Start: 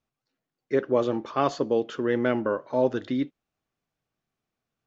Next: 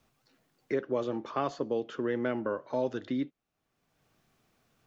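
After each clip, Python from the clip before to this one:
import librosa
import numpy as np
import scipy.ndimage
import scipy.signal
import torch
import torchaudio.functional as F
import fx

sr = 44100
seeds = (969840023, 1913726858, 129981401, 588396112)

y = fx.band_squash(x, sr, depth_pct=70)
y = F.gain(torch.from_numpy(y), -7.0).numpy()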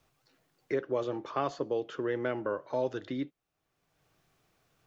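y = fx.peak_eq(x, sr, hz=230.0, db=-10.5, octaves=0.26)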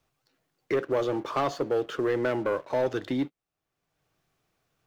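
y = fx.leveller(x, sr, passes=2)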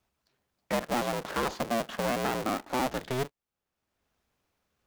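y = fx.cycle_switch(x, sr, every=2, mode='inverted')
y = F.gain(torch.from_numpy(y), -3.0).numpy()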